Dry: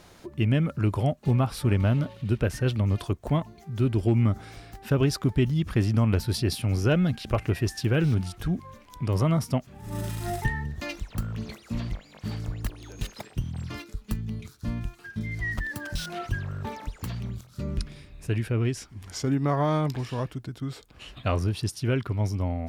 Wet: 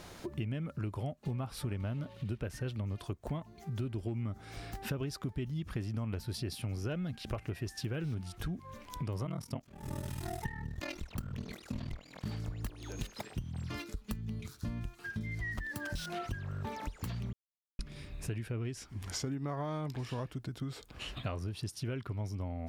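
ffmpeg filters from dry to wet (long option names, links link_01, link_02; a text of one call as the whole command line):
ffmpeg -i in.wav -filter_complex "[0:a]asettb=1/sr,asplit=3[link_01][link_02][link_03];[link_01]atrim=end=9.254[link_04];[link_02]atrim=start=9.25:end=12.27,asetpts=PTS-STARTPTS,afade=type=in:duration=0.004:curve=qsin,afade=type=out:start_time=3.016:duration=0.004:curve=qsin,aeval=exprs='val(0)*sin(2*PI*20*n/s)':channel_layout=same[link_05];[link_03]atrim=start=12.266[link_06];[link_04][link_05]acrossfade=duration=0.004:curve1=hsin:curve2=qsin[link_07];[link_07][link_06]acrossfade=duration=0.004:curve1=qsin:curve2=hsin,asplit=3[link_08][link_09][link_10];[link_08]atrim=end=17.33,asetpts=PTS-STARTPTS,afade=type=out:start_time=17.326:duration=0.004:curve=hsin[link_11];[link_09]atrim=start=17.33:end=17.79,asetpts=PTS-STARTPTS,volume=0[link_12];[link_10]atrim=start=17.79,asetpts=PTS-STARTPTS,afade=type=in:duration=0.004:curve=hsin[link_13];[link_11][link_12][link_13]concat=n=3:v=0:a=1,acompressor=threshold=-38dB:ratio=5,volume=2dB" out.wav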